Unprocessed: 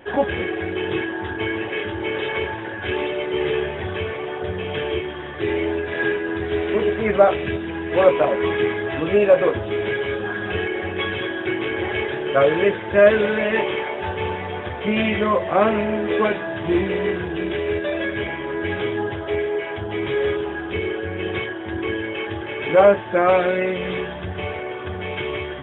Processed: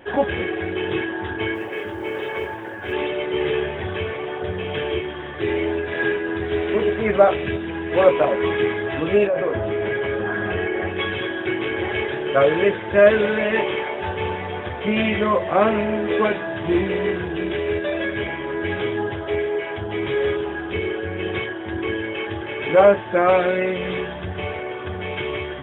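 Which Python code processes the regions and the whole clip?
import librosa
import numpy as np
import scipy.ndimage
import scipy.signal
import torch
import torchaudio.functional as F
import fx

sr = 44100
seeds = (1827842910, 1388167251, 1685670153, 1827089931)

y = fx.chain(x, sr, fx.lowpass(hz=1600.0, slope=6),
    fx.low_shelf(hz=210.0, db=-7.0),
    fx.mod_noise(seeds[0], snr_db=34), at=(1.54, 2.93))
y = fx.chain(y, sr, fx.lowpass(hz=2400.0, slope=12),
    fx.comb_fb(f0_hz=650.0, decay_s=0.17, harmonics='odd', damping=0.0, mix_pct=70),
    fx.env_flatten(amount_pct=70), at=(9.27, 10.88))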